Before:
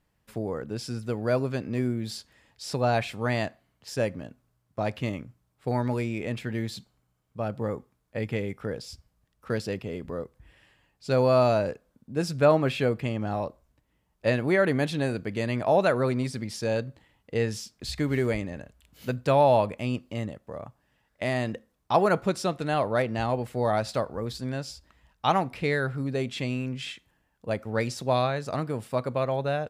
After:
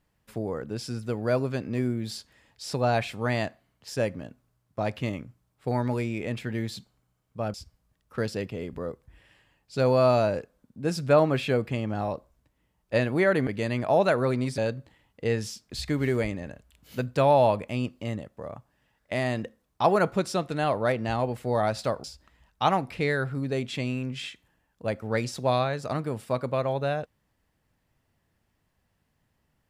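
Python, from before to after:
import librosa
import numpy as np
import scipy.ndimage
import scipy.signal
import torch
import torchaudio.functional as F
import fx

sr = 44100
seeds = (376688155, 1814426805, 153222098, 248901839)

y = fx.edit(x, sr, fx.cut(start_s=7.54, length_s=1.32),
    fx.cut(start_s=14.79, length_s=0.46),
    fx.cut(start_s=16.36, length_s=0.32),
    fx.cut(start_s=24.14, length_s=0.53), tone=tone)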